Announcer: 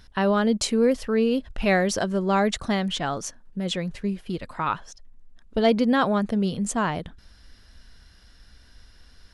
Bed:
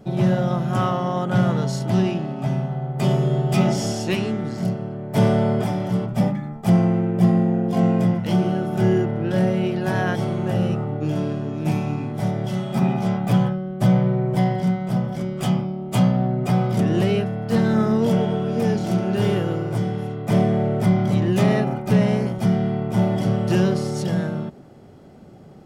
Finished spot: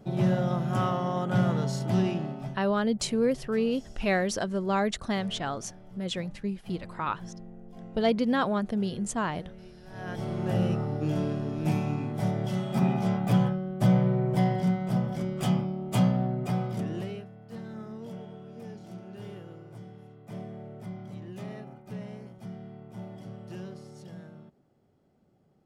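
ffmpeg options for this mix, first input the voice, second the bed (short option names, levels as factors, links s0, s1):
-filter_complex "[0:a]adelay=2400,volume=0.562[s0];[1:a]volume=6.31,afade=t=out:st=2.26:d=0.34:silence=0.0891251,afade=t=in:st=9.9:d=0.65:silence=0.0794328,afade=t=out:st=15.89:d=1.39:silence=0.141254[s1];[s0][s1]amix=inputs=2:normalize=0"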